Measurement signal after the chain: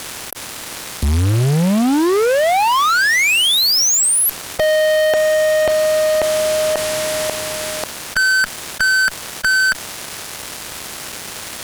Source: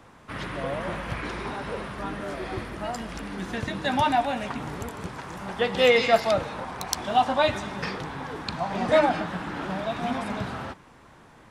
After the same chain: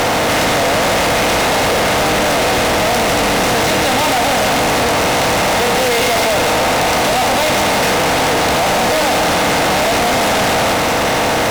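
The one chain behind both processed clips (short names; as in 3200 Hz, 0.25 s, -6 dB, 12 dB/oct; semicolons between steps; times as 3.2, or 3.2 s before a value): per-bin compression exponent 0.4; fuzz box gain 37 dB, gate -43 dBFS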